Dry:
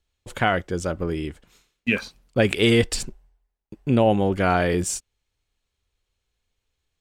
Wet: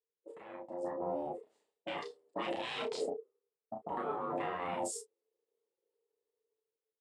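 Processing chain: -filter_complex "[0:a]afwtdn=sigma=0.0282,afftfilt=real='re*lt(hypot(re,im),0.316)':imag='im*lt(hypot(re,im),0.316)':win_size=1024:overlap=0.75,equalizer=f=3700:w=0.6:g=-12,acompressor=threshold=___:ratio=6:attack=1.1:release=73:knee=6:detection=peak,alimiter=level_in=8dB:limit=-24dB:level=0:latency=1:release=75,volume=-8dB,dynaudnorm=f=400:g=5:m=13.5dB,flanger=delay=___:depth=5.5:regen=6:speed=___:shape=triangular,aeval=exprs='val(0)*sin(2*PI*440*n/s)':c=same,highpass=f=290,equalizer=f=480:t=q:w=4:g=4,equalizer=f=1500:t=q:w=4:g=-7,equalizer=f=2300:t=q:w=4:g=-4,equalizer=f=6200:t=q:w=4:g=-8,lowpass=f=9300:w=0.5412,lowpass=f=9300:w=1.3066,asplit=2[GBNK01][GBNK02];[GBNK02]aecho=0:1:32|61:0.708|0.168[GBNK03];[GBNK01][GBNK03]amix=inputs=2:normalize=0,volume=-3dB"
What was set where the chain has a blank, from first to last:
-36dB, 6.2, 0.47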